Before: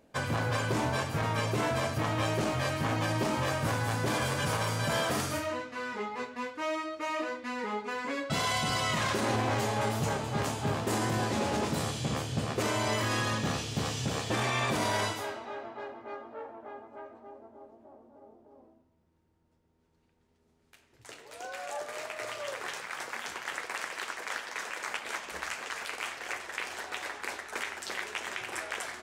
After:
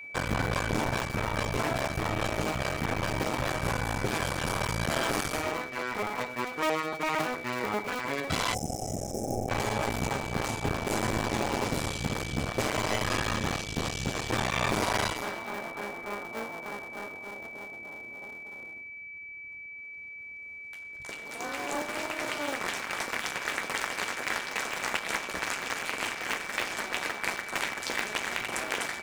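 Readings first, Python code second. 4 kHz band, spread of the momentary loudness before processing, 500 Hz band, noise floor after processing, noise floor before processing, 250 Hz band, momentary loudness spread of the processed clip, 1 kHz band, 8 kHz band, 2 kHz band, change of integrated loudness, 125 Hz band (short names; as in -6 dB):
+1.5 dB, 11 LU, +0.5 dB, -43 dBFS, -71 dBFS, +0.5 dB, 11 LU, +1.0 dB, +2.0 dB, +3.0 dB, +0.5 dB, -1.5 dB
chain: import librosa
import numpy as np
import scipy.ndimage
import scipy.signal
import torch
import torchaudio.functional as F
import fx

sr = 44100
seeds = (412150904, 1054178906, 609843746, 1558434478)

y = fx.cycle_switch(x, sr, every=2, mode='muted')
y = fx.rider(y, sr, range_db=3, speed_s=2.0)
y = y + 10.0 ** (-45.0 / 20.0) * np.sin(2.0 * np.pi * 2300.0 * np.arange(len(y)) / sr)
y = fx.spec_box(y, sr, start_s=8.54, length_s=0.95, low_hz=840.0, high_hz=5100.0, gain_db=-29)
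y = F.gain(torch.from_numpy(y), 4.5).numpy()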